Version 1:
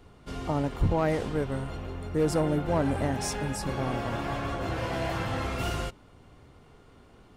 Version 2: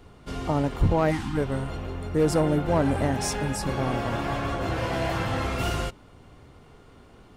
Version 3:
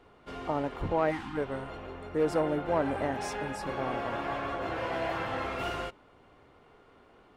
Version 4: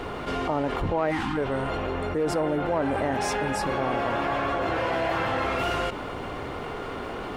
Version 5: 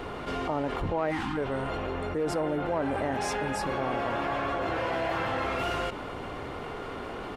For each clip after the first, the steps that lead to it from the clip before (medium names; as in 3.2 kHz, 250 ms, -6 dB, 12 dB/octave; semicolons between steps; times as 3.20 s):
time-frequency box 1.11–1.37 s, 350–740 Hz -27 dB; trim +3.5 dB
tone controls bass -12 dB, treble -12 dB; trim -3 dB
level flattener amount 70%
resampled via 32 kHz; trim -3.5 dB